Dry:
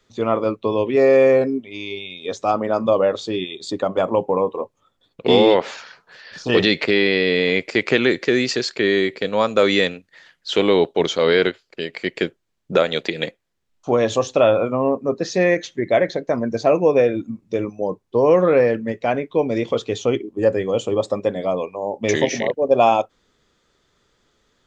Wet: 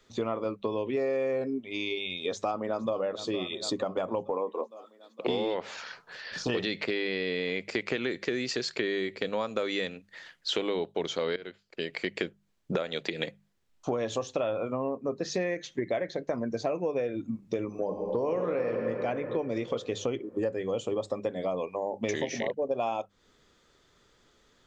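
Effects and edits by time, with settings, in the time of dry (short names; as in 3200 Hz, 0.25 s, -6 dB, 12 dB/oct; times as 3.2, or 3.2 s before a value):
2.24–3 echo throw 0.46 s, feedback 60%, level -17 dB
4.3–5.27 HPF 240 Hz 24 dB/oct
11.36–12.23 fade in, from -19.5 dB
17.66–18.79 reverb throw, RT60 2.8 s, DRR 3 dB
whole clip: notches 50/100/150/200 Hz; compressor 6:1, threshold -28 dBFS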